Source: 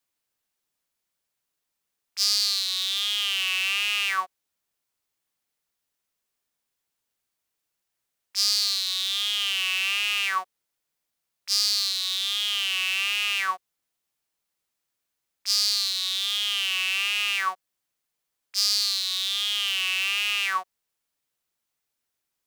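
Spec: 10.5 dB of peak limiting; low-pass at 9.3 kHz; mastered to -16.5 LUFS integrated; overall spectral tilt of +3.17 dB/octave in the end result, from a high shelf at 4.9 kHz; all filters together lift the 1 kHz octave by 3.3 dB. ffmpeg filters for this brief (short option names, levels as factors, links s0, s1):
-af "lowpass=9300,equalizer=f=1000:t=o:g=4,highshelf=f=4900:g=-4,volume=5.01,alimiter=limit=0.473:level=0:latency=1"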